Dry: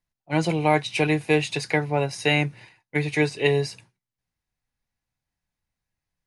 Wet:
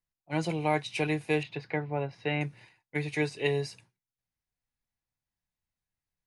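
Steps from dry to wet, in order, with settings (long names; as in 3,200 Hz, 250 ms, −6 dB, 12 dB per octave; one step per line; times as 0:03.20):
0:01.43–0:02.41: high-frequency loss of the air 340 metres
level −7.5 dB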